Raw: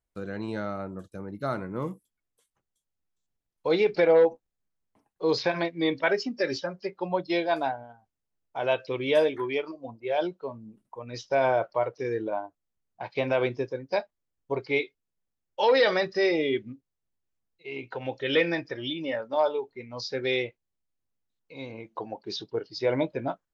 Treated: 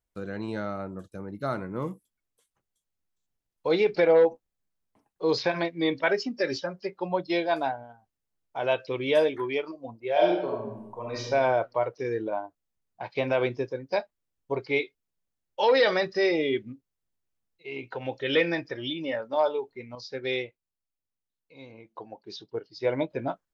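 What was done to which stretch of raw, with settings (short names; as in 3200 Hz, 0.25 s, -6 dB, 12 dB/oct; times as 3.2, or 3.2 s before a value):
10.12–11.23 reverb throw, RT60 0.91 s, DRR -3.5 dB
19.95–23.11 upward expander, over -36 dBFS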